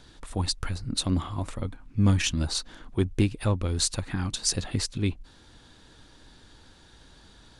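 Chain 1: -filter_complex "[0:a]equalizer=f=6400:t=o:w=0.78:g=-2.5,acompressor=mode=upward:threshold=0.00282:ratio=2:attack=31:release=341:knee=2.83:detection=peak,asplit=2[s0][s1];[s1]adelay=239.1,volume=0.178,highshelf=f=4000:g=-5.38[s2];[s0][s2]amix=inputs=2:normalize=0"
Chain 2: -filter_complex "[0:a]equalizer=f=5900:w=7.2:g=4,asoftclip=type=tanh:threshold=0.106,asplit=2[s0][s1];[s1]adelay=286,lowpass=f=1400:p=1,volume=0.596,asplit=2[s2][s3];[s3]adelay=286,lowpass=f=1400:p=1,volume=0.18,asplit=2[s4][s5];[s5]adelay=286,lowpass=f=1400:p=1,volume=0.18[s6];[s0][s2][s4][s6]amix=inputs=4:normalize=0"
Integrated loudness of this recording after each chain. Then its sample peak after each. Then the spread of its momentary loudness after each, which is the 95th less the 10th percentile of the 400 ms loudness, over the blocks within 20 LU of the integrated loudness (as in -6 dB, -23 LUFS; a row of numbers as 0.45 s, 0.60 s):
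-28.5 LUFS, -29.5 LUFS; -7.5 dBFS, -16.0 dBFS; 10 LU, 8 LU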